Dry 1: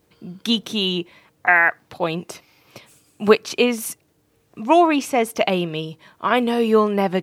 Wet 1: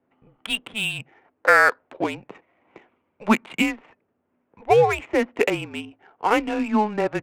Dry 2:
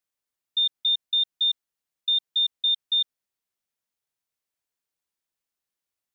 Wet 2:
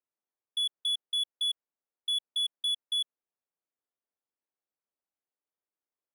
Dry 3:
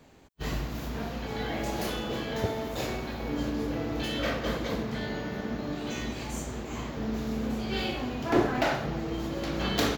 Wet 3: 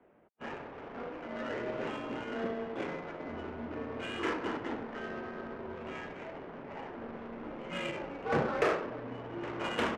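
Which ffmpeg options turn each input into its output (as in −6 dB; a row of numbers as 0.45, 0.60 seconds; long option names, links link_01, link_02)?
-af "highpass=frequency=490:width_type=q:width=0.5412,highpass=frequency=490:width_type=q:width=1.307,lowpass=frequency=3300:width_type=q:width=0.5176,lowpass=frequency=3300:width_type=q:width=0.7071,lowpass=frequency=3300:width_type=q:width=1.932,afreqshift=-210,adynamicsmooth=sensitivity=4.5:basefreq=1300"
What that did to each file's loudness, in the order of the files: −2.0, −7.0, −6.0 LU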